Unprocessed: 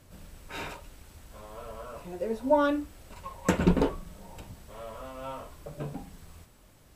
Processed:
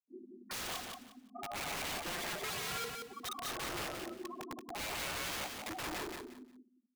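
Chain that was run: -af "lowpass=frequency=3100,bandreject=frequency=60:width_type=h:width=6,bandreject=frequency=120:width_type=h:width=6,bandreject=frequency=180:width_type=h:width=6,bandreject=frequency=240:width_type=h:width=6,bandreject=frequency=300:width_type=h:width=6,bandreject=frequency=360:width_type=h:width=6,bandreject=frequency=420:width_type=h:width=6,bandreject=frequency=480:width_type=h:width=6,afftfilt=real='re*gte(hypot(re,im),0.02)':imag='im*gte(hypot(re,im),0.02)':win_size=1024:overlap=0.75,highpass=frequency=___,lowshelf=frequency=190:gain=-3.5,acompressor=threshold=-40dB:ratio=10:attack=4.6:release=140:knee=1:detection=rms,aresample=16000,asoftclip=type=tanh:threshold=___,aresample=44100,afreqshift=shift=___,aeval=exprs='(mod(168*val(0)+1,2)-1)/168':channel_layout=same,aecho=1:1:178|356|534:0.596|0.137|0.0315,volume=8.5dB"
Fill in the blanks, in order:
120, -38dB, 170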